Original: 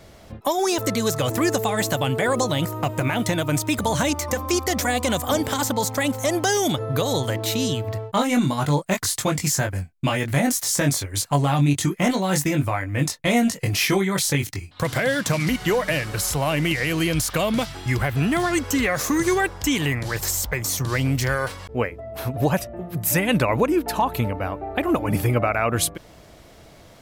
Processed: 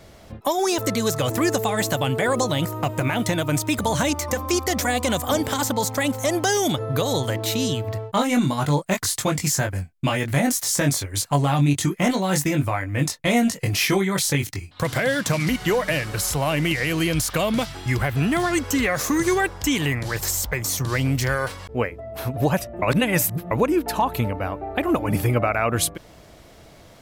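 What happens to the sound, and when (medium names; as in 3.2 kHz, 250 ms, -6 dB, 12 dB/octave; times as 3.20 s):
22.82–23.51 s: reverse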